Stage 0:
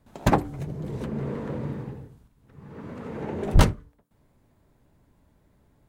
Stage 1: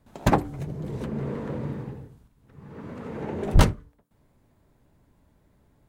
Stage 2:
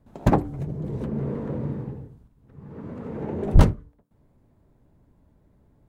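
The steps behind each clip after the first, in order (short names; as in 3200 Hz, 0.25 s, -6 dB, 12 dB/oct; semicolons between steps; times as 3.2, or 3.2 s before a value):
nothing audible
tilt shelf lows +5.5 dB, about 1100 Hz; gain -2.5 dB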